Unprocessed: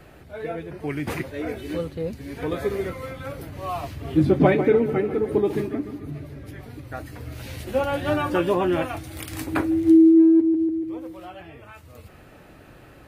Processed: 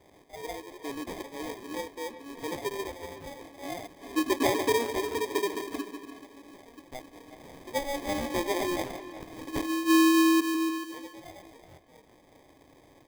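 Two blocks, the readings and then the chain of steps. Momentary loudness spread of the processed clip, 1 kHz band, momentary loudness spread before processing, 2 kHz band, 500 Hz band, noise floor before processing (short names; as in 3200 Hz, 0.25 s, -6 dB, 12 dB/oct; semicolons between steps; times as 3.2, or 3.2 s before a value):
22 LU, -2.5 dB, 20 LU, -1.5 dB, -8.5 dB, -48 dBFS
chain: elliptic high-pass 260 Hz; sample-rate reducer 1400 Hz, jitter 0%; speakerphone echo 0.37 s, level -12 dB; gain -7 dB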